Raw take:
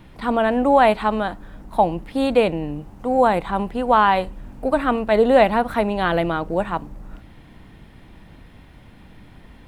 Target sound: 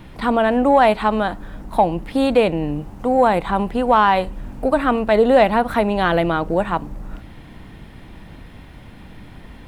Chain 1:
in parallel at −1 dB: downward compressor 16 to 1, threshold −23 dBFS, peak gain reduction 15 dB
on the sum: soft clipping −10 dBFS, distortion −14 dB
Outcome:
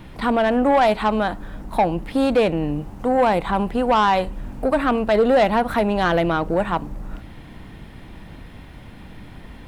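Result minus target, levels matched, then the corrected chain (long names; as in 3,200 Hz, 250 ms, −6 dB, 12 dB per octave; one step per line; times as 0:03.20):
soft clipping: distortion +15 dB
in parallel at −1 dB: downward compressor 16 to 1, threshold −23 dBFS, peak gain reduction 15 dB
on the sum: soft clipping 0 dBFS, distortion −29 dB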